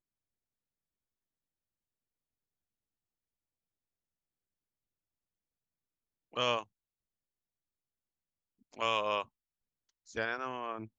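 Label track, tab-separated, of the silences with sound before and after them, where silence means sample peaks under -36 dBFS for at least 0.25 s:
6.630000	8.790000	silence
9.220000	10.160000	silence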